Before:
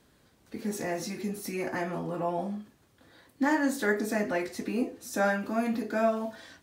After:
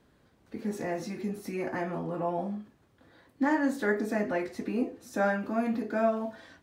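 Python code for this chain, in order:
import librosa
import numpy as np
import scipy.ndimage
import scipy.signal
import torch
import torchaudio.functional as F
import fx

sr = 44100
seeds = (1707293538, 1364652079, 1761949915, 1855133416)

y = fx.high_shelf(x, sr, hz=3500.0, db=-11.0)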